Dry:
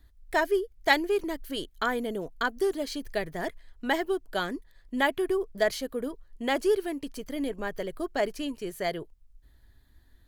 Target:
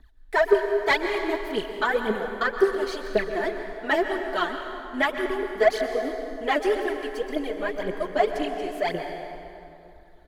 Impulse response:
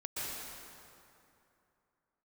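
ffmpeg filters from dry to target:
-filter_complex "[0:a]aecho=1:1:4.6:0.39,aphaser=in_gain=1:out_gain=1:delay=3.5:decay=0.78:speed=1.9:type=triangular,asplit=2[link_01][link_02];[link_02]highpass=frequency=720:poles=1,volume=14dB,asoftclip=type=tanh:threshold=-2.5dB[link_03];[link_01][link_03]amix=inputs=2:normalize=0,lowpass=frequency=1500:poles=1,volume=-6dB,asplit=2[link_04][link_05];[1:a]atrim=start_sample=2205[link_06];[link_05][link_06]afir=irnorm=-1:irlink=0,volume=-6dB[link_07];[link_04][link_07]amix=inputs=2:normalize=0,volume=-6dB"

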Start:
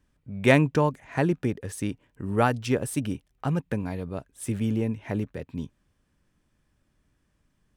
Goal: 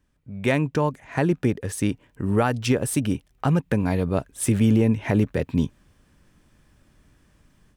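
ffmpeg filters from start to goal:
ffmpeg -i in.wav -af "dynaudnorm=framelen=700:gausssize=3:maxgain=12dB,alimiter=limit=-10.5dB:level=0:latency=1:release=188" out.wav

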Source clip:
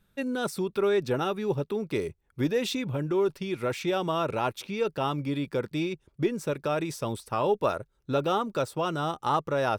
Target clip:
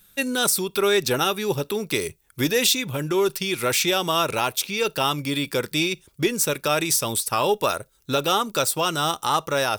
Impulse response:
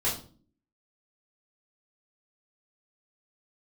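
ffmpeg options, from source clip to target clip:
-filter_complex "[0:a]crystalizer=i=8.5:c=0,alimiter=limit=-11dB:level=0:latency=1:release=354,asplit=2[link_01][link_02];[1:a]atrim=start_sample=2205,atrim=end_sample=3528[link_03];[link_02][link_03]afir=irnorm=-1:irlink=0,volume=-32dB[link_04];[link_01][link_04]amix=inputs=2:normalize=0,volume=2.5dB"

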